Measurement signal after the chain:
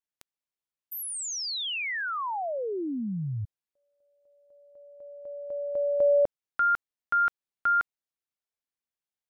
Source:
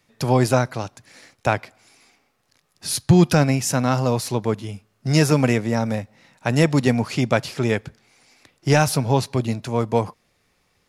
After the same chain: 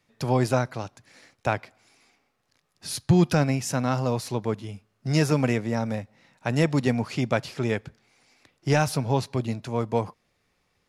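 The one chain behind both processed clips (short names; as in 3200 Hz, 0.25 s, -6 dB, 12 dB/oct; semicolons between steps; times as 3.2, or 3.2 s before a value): high shelf 7200 Hz -5.5 dB; gain -5 dB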